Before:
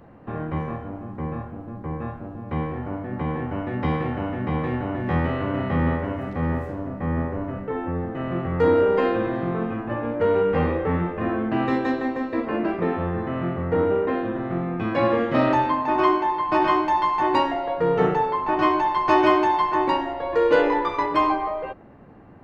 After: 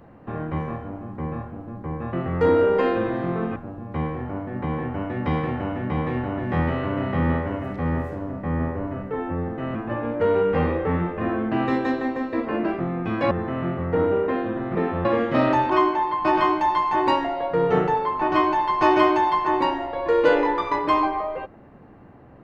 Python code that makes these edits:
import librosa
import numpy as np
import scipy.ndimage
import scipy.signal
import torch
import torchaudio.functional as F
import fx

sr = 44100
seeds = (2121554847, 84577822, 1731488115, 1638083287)

y = fx.edit(x, sr, fx.move(start_s=8.32, length_s=1.43, to_s=2.13),
    fx.swap(start_s=12.8, length_s=0.3, other_s=14.54, other_length_s=0.51),
    fx.cut(start_s=15.7, length_s=0.27), tone=tone)